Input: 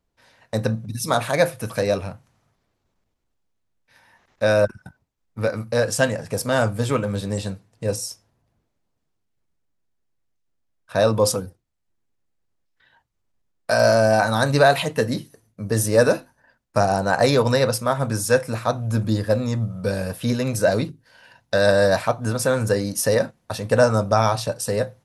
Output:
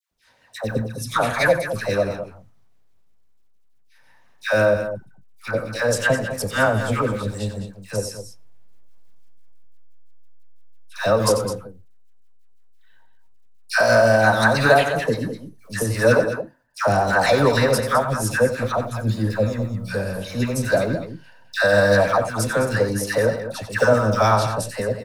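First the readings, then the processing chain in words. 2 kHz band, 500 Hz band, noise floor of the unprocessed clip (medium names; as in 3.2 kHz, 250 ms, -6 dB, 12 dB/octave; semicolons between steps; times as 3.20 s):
+4.5 dB, +0.5 dB, -74 dBFS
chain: dynamic bell 1.6 kHz, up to +6 dB, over -36 dBFS, Q 1; harmonic tremolo 6 Hz, depth 50%, crossover 470 Hz; in parallel at -6.5 dB: hysteresis with a dead band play -15.5 dBFS; on the sum: companded quantiser 8-bit; phase dispersion lows, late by 113 ms, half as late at 1.1 kHz; on a send: loudspeakers at several distances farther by 31 m -11 dB, 72 m -11 dB; on the sum: trim -1 dB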